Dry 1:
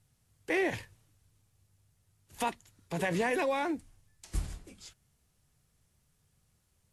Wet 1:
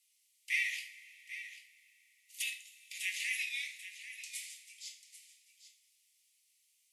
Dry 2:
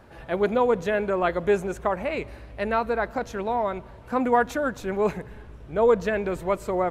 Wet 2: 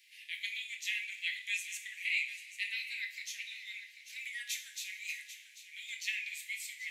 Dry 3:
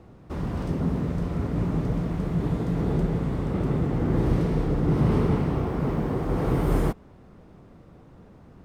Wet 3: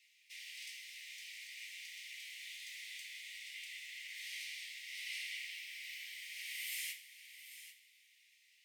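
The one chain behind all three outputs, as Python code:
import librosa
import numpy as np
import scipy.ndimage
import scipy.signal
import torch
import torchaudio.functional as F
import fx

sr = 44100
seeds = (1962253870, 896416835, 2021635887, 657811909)

y = scipy.signal.sosfilt(scipy.signal.butter(16, 2000.0, 'highpass', fs=sr, output='sos'), x)
y = y + 10.0 ** (-12.5 / 20.0) * np.pad(y, (int(792 * sr / 1000.0), 0))[:len(y)]
y = fx.rev_double_slope(y, sr, seeds[0], early_s=0.38, late_s=3.6, knee_db=-21, drr_db=2.0)
y = F.gain(torch.from_numpy(y), 2.5).numpy()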